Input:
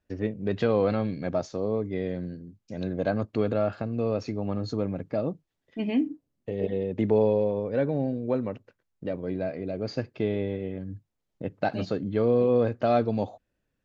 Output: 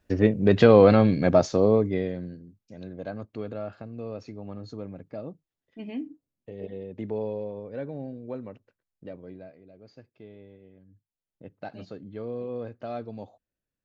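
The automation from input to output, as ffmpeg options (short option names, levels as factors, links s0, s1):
-af "volume=7.08,afade=t=out:st=1.63:d=0.49:silence=0.316228,afade=t=out:st=2.12:d=0.67:silence=0.398107,afade=t=out:st=9.09:d=0.51:silence=0.281838,afade=t=in:st=10.92:d=0.54:silence=0.398107"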